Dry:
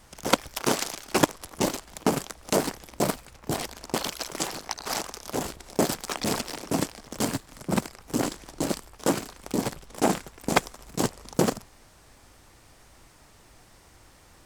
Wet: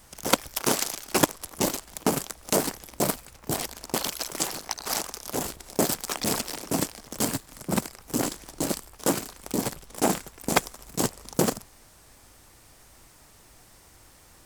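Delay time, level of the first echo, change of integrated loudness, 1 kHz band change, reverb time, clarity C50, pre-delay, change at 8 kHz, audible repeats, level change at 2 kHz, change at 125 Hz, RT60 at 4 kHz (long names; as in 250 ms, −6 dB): no echo audible, no echo audible, +1.0 dB, −1.0 dB, no reverb audible, no reverb audible, no reverb audible, +3.5 dB, no echo audible, −0.5 dB, −1.0 dB, no reverb audible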